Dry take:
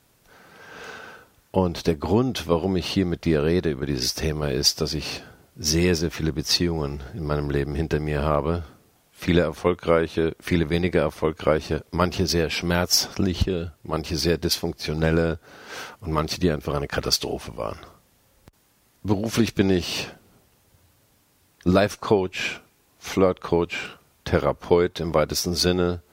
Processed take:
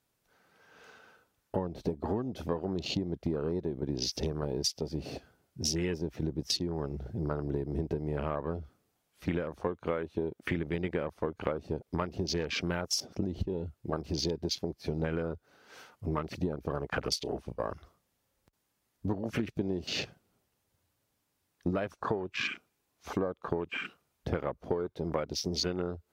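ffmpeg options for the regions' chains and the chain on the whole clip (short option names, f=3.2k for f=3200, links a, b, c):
-filter_complex "[0:a]asettb=1/sr,asplit=3[a][b][c];[a]atrim=end=17.134[d];[b]atrim=start=17.13:end=17.71,asetpts=PTS-STARTPTS,afade=t=in:d=0.004:c=qsin,afade=t=out:st=0.576:d=0.004:c=qsin,agate=range=-33dB:threshold=-34dB:ratio=3:release=100:detection=peak,asplit=2[e][f];[f]adelay=33,volume=-13dB[g];[e][g]amix=inputs=2:normalize=0,atrim=end_sample=25578[h];[c]atrim=start=17.706[i];[d][h]acrossfade=d=0.004:c1=hsin:c2=qsin[j];[j][i]acrossfade=d=0.004:c1=qsin:c2=hsin,afwtdn=0.0316,lowshelf=f=140:g=-3.5,acompressor=threshold=-29dB:ratio=6"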